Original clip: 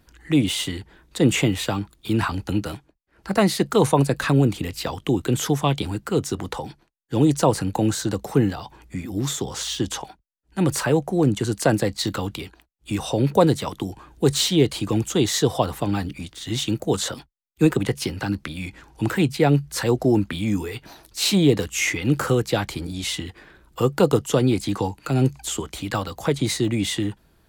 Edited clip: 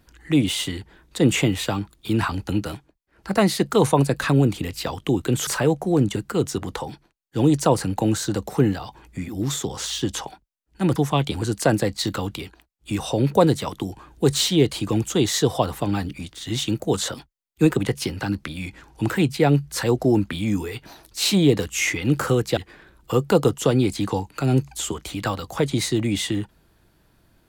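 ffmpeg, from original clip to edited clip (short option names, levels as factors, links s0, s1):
-filter_complex "[0:a]asplit=6[s0][s1][s2][s3][s4][s5];[s0]atrim=end=5.472[s6];[s1]atrim=start=10.728:end=11.422[s7];[s2]atrim=start=5.928:end=10.732[s8];[s3]atrim=start=5.468:end=5.932[s9];[s4]atrim=start=11.418:end=22.572[s10];[s5]atrim=start=23.248[s11];[s6][s7]acrossfade=d=0.004:c1=hsin:c2=hsin[s12];[s12][s8]acrossfade=d=0.004:c1=hsin:c2=hsin[s13];[s13][s9]acrossfade=d=0.004:c1=hsin:c2=hsin[s14];[s14][s10]acrossfade=d=0.004:c1=hsin:c2=hsin[s15];[s15][s11]acrossfade=d=0.004:c1=hsin:c2=hsin"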